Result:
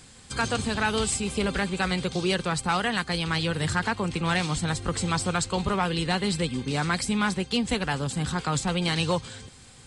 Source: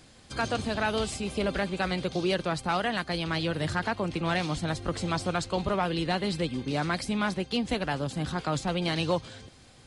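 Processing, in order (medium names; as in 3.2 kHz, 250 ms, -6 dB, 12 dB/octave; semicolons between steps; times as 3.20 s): graphic EQ with 31 bands 315 Hz -7 dB, 630 Hz -10 dB, 8 kHz +10 dB; trim +4 dB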